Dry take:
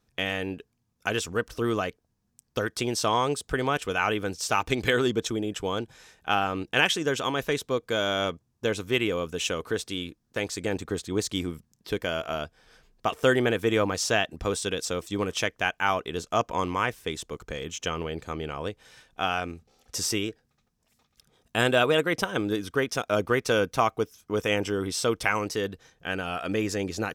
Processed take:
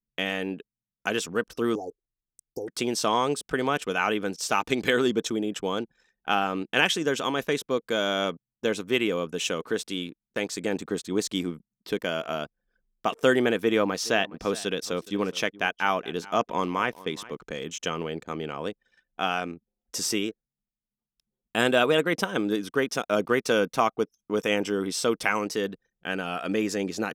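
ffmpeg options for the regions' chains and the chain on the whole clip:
-filter_complex "[0:a]asettb=1/sr,asplit=3[a][b][c];[a]atrim=end=1.754[d];[b]atrim=start=1.75:end=2.68,asetpts=PTS-STARTPTS,afade=t=in:d=0.004:c=qsin,afade=t=out:st=0.926:d=0.004:c=qsin,aecho=1:1:2.5:0.8,atrim=end_sample=41013,acompressor=threshold=-32dB:ratio=2.5:attack=3.2:release=140:knee=1:detection=peak,asuperstop=centerf=2100:order=20:qfactor=0.54[e];[c]atrim=start=2.676[f];[d][e]acrossfade=d=0.004:c1=hsin:c2=qsin[g];[g][f]acrossfade=d=0.004:c1=qsin:c2=hsin,asettb=1/sr,asplit=3[h][i][j];[h]atrim=end=13.614[k];[i]atrim=start=13.61:end=17.48,asetpts=PTS-STARTPTS,afade=t=in:d=0.004:c=qsin,afade=t=out:st=3.866:d=0.004:c=qsin,equalizer=f=7.7k:t=o:w=0.49:g=-7,aecho=1:1:417:0.106,atrim=end_sample=170667[l];[j]atrim=start=17.476[m];[k][l]acrossfade=d=0.004:c1=hsin:c2=qsin[n];[n][m]acrossfade=d=0.004:c1=qsin:c2=hsin,lowshelf=f=130:t=q:w=1.5:g=-11,anlmdn=0.0158"

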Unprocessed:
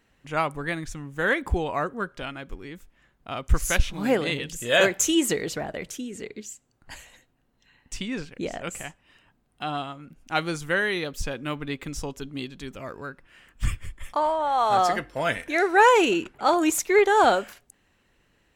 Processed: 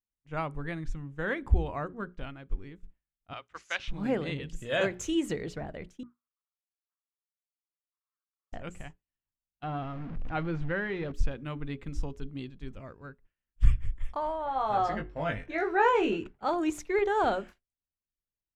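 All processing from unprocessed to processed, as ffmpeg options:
-filter_complex "[0:a]asettb=1/sr,asplit=3[a][b][c];[a]atrim=end=3.334[d];[b]atrim=start=3.33:end=3.88,asetpts=PTS-STARTPTS,afade=t=in:d=0.004:c=qsin,afade=t=out:st=0.546:d=0.004:c=qsin,highpass=720,lowpass=3.9k,highshelf=f=2.5k:g=11.5[e];[c]atrim=start=3.876[f];[d][e]acrossfade=d=0.004:c1=hsin:c2=qsin[g];[g][f]acrossfade=d=0.004:c1=qsin:c2=hsin,asettb=1/sr,asplit=3[h][i][j];[h]atrim=end=6.034[k];[i]atrim=start=6.03:end=8.52,asetpts=PTS-STARTPTS,afade=t=in:d=0.004:c=qsin,afade=t=out:st=2.486:d=0.004:c=qsin,acrusher=bits=7:dc=4:mix=0:aa=0.000001,asuperpass=centerf=1200:order=4:qfactor=4.2,acompressor=threshold=-57dB:ratio=3:attack=3.2:release=140:knee=1:detection=peak[l];[j]atrim=start=8.516[m];[k][l]acrossfade=d=0.004:c1=hsin:c2=qsin[n];[n][m]acrossfade=d=0.004:c1=qsin:c2=hsin,asettb=1/sr,asplit=3[o][p][q];[o]atrim=end=9.634[r];[p]atrim=start=9.63:end=11.12,asetpts=PTS-STARTPTS,afade=t=in:d=0.004:c=qsin,afade=t=out:st=1.486:d=0.004:c=qsin,aeval=exprs='val(0)+0.5*0.0282*sgn(val(0))':c=same,lowpass=2.4k[s];[q]atrim=start=11.116[t];[r][s]acrossfade=d=0.004:c1=hsin:c2=qsin[u];[u][t]acrossfade=d=0.004:c1=qsin:c2=hsin,asettb=1/sr,asplit=3[v][w][x];[v]atrim=end=14.444[y];[w]atrim=start=14.44:end=16.18,asetpts=PTS-STARTPTS,afade=t=in:d=0.004:c=qsin,afade=t=out:st=1.736:d=0.004:c=qsin,equalizer=f=12k:w=0.5:g=-10.5,asplit=2[z][aa];[aa]adelay=19,volume=-4dB[ab];[z][ab]amix=inputs=2:normalize=0,atrim=end_sample=76734[ac];[x]atrim=start=16.176[ad];[y][ac]acrossfade=d=0.004:c1=hsin:c2=qsin[ae];[ae][ad]acrossfade=d=0.004:c1=qsin:c2=hsin,aemphasis=mode=reproduction:type=bsi,bandreject=f=60:t=h:w=6,bandreject=f=120:t=h:w=6,bandreject=f=180:t=h:w=6,bandreject=f=240:t=h:w=6,bandreject=f=300:t=h:w=6,bandreject=f=360:t=h:w=6,bandreject=f=420:t=h:w=6,agate=range=-33dB:threshold=-30dB:ratio=3:detection=peak,volume=-9dB"

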